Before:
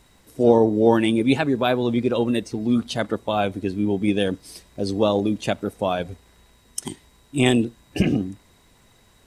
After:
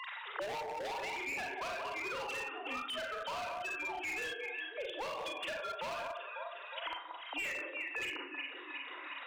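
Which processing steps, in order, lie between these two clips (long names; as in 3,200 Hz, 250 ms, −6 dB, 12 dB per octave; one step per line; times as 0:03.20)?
three sine waves on the formant tracks
high-pass filter 810 Hz 24 dB per octave
transient designer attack −1 dB, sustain −5 dB
downward compressor 16 to 1, threshold −34 dBFS, peak gain reduction 14.5 dB
delay that swaps between a low-pass and a high-pass 181 ms, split 1,300 Hz, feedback 57%, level −6.5 dB
four-comb reverb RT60 0.38 s, combs from 32 ms, DRR −0.5 dB
hard clipping −37 dBFS, distortion −8 dB
multiband upward and downward compressor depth 100%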